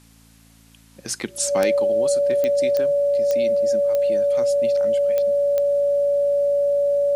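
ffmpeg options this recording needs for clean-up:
-af "adeclick=t=4,bandreject=f=55.7:t=h:w=4,bandreject=f=111.4:t=h:w=4,bandreject=f=167.1:t=h:w=4,bandreject=f=222.8:t=h:w=4,bandreject=f=278.5:t=h:w=4,bandreject=f=570:w=30,agate=range=0.0891:threshold=0.00708"

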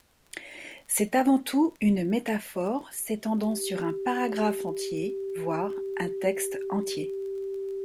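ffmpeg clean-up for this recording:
-af "adeclick=t=4,bandreject=f=390:w=30,agate=range=0.0891:threshold=0.0126"

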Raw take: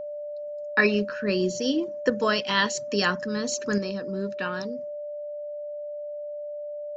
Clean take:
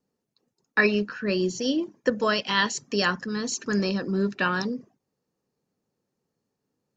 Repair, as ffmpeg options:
-af "bandreject=f=590:w=30,asetnsamples=n=441:p=0,asendcmd='3.78 volume volume 6.5dB',volume=1"

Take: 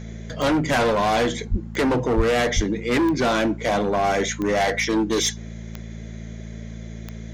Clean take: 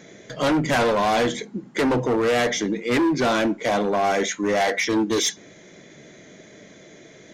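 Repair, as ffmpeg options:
-filter_complex "[0:a]adeclick=t=4,bandreject=f=55.8:t=h:w=4,bandreject=f=111.6:t=h:w=4,bandreject=f=167.4:t=h:w=4,bandreject=f=223.2:t=h:w=4,asplit=3[s0][s1][s2];[s0]afade=t=out:st=1.5:d=0.02[s3];[s1]highpass=f=140:w=0.5412,highpass=f=140:w=1.3066,afade=t=in:st=1.5:d=0.02,afade=t=out:st=1.62:d=0.02[s4];[s2]afade=t=in:st=1.62:d=0.02[s5];[s3][s4][s5]amix=inputs=3:normalize=0,asplit=3[s6][s7][s8];[s6]afade=t=out:st=2.16:d=0.02[s9];[s7]highpass=f=140:w=0.5412,highpass=f=140:w=1.3066,afade=t=in:st=2.16:d=0.02,afade=t=out:st=2.28:d=0.02[s10];[s8]afade=t=in:st=2.28:d=0.02[s11];[s9][s10][s11]amix=inputs=3:normalize=0,asplit=3[s12][s13][s14];[s12]afade=t=out:st=2.55:d=0.02[s15];[s13]highpass=f=140:w=0.5412,highpass=f=140:w=1.3066,afade=t=in:st=2.55:d=0.02,afade=t=out:st=2.67:d=0.02[s16];[s14]afade=t=in:st=2.67:d=0.02[s17];[s15][s16][s17]amix=inputs=3:normalize=0"

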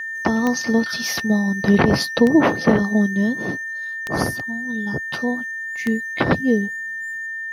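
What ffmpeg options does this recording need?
-af "adeclick=t=4,bandreject=f=1800:w=30"

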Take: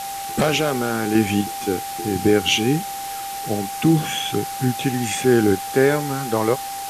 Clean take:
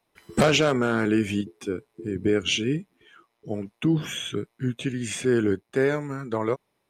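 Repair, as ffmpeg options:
-af "adeclick=t=4,bandreject=f=790:w=30,afwtdn=0.022,asetnsamples=n=441:p=0,asendcmd='1.15 volume volume -6dB',volume=1"

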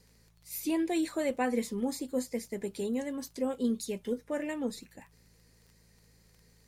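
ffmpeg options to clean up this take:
-af "adeclick=t=4,bandreject=f=55.3:t=h:w=4,bandreject=f=110.6:t=h:w=4,bandreject=f=165.9:t=h:w=4"

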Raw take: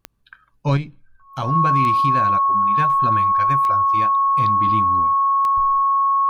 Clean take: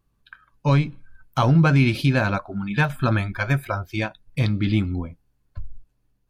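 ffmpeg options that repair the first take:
-af "adeclick=t=4,bandreject=f=1100:w=30,asetnsamples=n=441:p=0,asendcmd='0.77 volume volume 6dB',volume=1"

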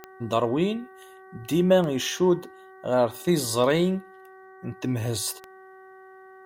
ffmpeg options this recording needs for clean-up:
-af "adeclick=t=4,bandreject=f=379.2:t=h:w=4,bandreject=f=758.4:t=h:w=4,bandreject=f=1137.6:t=h:w=4,bandreject=f=1516.8:t=h:w=4,bandreject=f=1896:t=h:w=4"

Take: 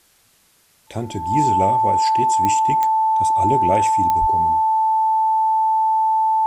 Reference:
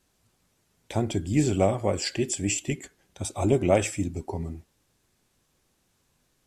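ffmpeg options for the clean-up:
-filter_complex "[0:a]adeclick=t=4,bandreject=f=880:w=30,asplit=3[s0][s1][s2];[s0]afade=t=out:st=4.2:d=0.02[s3];[s1]highpass=f=140:w=0.5412,highpass=f=140:w=1.3066,afade=t=in:st=4.2:d=0.02,afade=t=out:st=4.32:d=0.02[s4];[s2]afade=t=in:st=4.32:d=0.02[s5];[s3][s4][s5]amix=inputs=3:normalize=0,agate=range=0.0891:threshold=0.00355"

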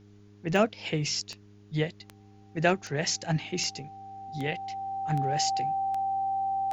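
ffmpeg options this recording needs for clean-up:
-af "adeclick=t=4,bandreject=f=102.3:t=h:w=4,bandreject=f=204.6:t=h:w=4,bandreject=f=306.9:t=h:w=4,bandreject=f=409.2:t=h:w=4,bandreject=f=780:w=30,agate=range=0.0891:threshold=0.00501"

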